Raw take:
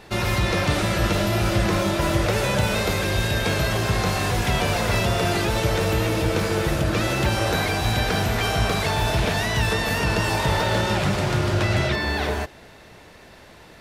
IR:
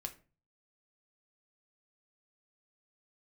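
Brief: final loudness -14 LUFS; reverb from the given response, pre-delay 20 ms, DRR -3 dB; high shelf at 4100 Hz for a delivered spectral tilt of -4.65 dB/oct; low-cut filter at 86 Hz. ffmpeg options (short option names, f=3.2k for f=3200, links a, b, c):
-filter_complex "[0:a]highpass=86,highshelf=f=4.1k:g=7,asplit=2[a][b];[1:a]atrim=start_sample=2205,adelay=20[c];[b][c]afir=irnorm=-1:irlink=0,volume=5.5dB[d];[a][d]amix=inputs=2:normalize=0,volume=2dB"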